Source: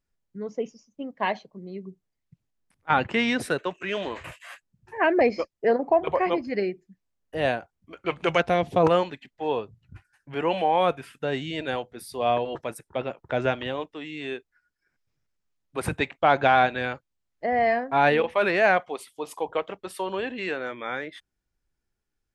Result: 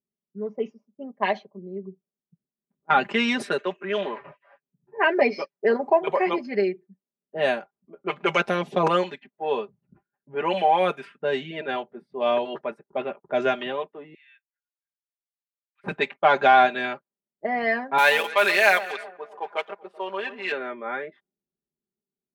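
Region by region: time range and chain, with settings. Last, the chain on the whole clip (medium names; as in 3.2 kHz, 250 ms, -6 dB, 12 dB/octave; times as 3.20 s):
4.16–5.57 s: elliptic low-pass 5.7 kHz + comb 7.1 ms, depth 51%
14.14–15.84 s: steep high-pass 1.8 kHz + treble shelf 4.5 kHz +5 dB
17.98–20.52 s: companding laws mixed up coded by A + tilt EQ +4 dB/octave + echo whose repeats swap between lows and highs 128 ms, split 1.3 kHz, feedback 61%, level -13 dB
whole clip: level-controlled noise filter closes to 330 Hz, open at -20.5 dBFS; high-pass 230 Hz 12 dB/octave; comb 5 ms, depth 80%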